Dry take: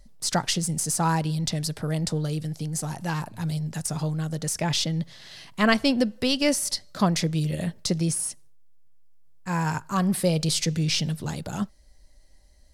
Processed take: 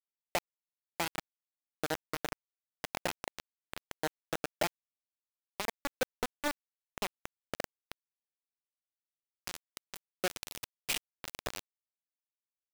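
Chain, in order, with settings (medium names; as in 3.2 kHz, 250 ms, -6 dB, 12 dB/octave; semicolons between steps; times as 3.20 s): bass shelf 370 Hz -8 dB; compression 20:1, threshold -37 dBFS, peak gain reduction 21.5 dB; low-pass sweep 900 Hz -> 2.7 kHz, 7.02–8.62 s; wavefolder -30 dBFS; static phaser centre 500 Hz, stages 4; bit crusher 6-bit; trim +8 dB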